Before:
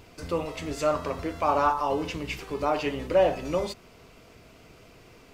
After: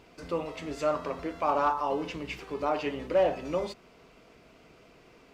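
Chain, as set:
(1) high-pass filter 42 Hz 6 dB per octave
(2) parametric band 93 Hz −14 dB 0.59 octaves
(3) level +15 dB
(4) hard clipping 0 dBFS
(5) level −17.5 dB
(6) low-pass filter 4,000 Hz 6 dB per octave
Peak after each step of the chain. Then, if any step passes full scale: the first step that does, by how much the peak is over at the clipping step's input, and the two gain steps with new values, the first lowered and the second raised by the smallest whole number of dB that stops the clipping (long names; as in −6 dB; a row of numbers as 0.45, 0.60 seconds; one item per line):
−11.5, −11.5, +3.5, 0.0, −17.5, −17.5 dBFS
step 3, 3.5 dB
step 3 +11 dB, step 5 −13.5 dB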